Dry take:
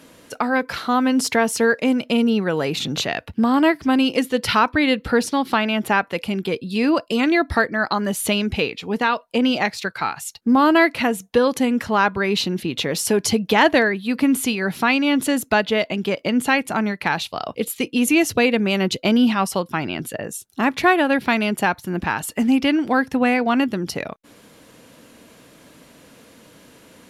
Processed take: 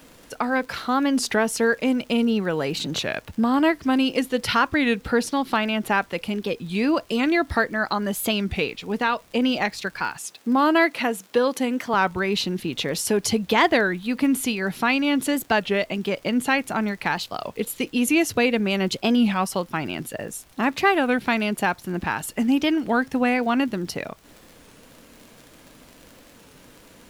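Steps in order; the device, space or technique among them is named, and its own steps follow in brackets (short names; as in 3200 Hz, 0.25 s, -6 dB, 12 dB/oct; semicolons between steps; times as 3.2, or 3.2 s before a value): warped LP (record warp 33 1/3 rpm, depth 160 cents; crackle 47/s -32 dBFS; pink noise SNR 32 dB); 10.17–11.94 HPF 230 Hz 12 dB/oct; gain -3 dB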